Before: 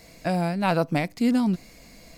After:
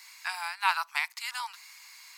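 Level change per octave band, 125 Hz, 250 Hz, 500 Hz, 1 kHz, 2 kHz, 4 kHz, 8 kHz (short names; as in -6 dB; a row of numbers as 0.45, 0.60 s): under -40 dB, under -40 dB, -30.0 dB, -2.5 dB, +2.5 dB, +2.5 dB, +2.5 dB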